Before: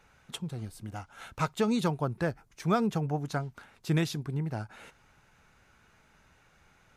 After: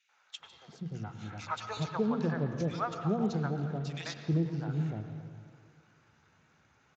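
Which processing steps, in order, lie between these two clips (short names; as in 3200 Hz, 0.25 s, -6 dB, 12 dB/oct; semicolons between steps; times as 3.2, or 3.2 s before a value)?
notches 60/120/180/240/300 Hz; 4.14–4.54 expander -33 dBFS; three bands offset in time highs, mids, lows 90/390 ms, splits 640/2200 Hz; reverb RT60 2.1 s, pre-delay 83 ms, DRR 7 dB; gain -2 dB; Speex 34 kbps 16000 Hz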